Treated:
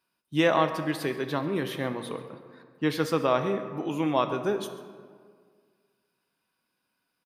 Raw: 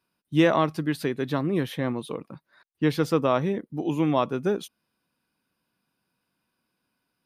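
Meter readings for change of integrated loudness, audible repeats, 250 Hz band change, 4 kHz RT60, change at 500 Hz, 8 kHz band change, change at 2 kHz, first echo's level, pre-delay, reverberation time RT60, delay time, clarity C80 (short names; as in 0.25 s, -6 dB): -2.5 dB, 1, -4.0 dB, 1.0 s, -1.5 dB, +0.5 dB, +0.5 dB, -18.0 dB, 5 ms, 1.9 s, 0.135 s, 10.5 dB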